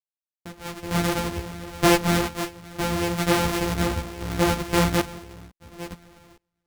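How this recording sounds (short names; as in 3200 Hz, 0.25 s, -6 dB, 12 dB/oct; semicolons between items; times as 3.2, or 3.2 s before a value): a buzz of ramps at a fixed pitch in blocks of 256 samples; random-step tremolo 2.2 Hz, depth 100%; a shimmering, thickened sound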